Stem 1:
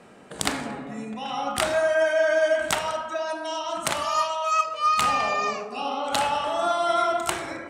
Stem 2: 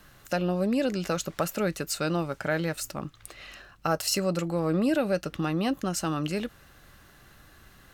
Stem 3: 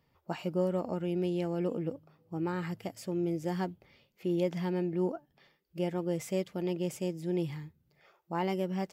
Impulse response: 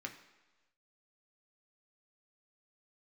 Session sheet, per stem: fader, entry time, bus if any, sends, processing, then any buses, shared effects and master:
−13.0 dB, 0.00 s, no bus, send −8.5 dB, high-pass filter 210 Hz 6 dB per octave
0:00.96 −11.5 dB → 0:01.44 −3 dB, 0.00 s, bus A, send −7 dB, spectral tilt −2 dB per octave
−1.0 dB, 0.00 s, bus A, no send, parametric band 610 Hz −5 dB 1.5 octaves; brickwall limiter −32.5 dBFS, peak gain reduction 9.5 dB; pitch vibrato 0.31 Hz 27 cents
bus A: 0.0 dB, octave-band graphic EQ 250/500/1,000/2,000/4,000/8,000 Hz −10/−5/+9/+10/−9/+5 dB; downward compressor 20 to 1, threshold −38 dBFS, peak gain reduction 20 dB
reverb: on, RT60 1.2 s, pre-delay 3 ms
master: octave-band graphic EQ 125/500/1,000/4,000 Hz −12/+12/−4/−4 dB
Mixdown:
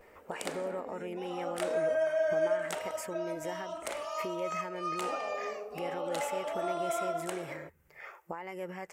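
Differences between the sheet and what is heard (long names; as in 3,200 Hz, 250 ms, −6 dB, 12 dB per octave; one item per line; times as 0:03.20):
stem 2: muted
stem 3 −1.0 dB → +11.0 dB
reverb: off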